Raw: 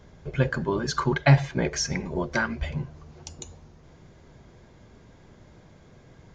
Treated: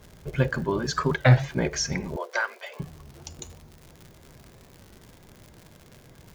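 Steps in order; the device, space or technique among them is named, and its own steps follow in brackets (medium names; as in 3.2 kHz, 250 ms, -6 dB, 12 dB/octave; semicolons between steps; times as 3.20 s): warped LP (warped record 33 1/3 rpm, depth 160 cents; crackle 130 per s -37 dBFS; white noise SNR 42 dB); 2.16–2.80 s: elliptic high-pass 450 Hz, stop band 80 dB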